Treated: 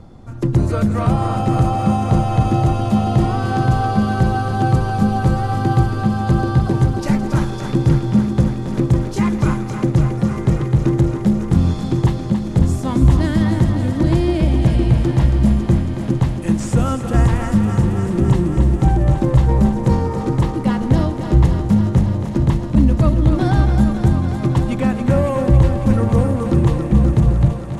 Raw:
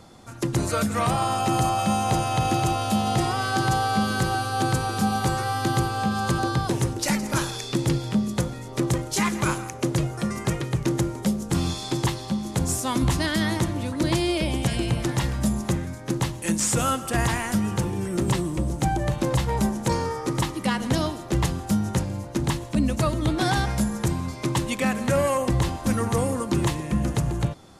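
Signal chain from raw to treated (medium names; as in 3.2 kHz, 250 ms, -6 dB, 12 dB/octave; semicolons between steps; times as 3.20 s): tilt EQ -3.5 dB/octave; thinning echo 276 ms, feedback 82%, high-pass 180 Hz, level -8 dB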